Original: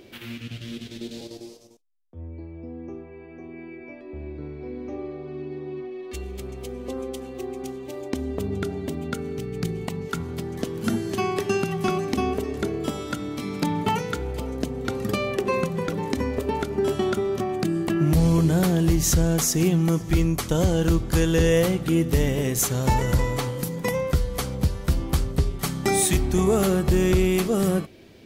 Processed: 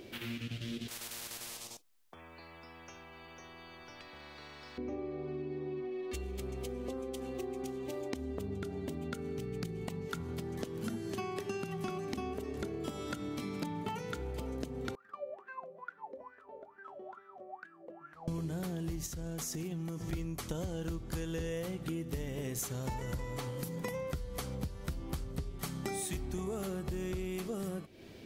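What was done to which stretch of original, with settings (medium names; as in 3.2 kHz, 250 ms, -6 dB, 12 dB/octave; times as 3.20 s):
0.88–4.78 s: spectrum-flattening compressor 10:1
14.95–18.28 s: wah-wah 2.3 Hz 520–1600 Hz, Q 20
19.06–20.13 s: compression 10:1, threshold -27 dBFS
whole clip: compression, threshold -34 dBFS; trim -2 dB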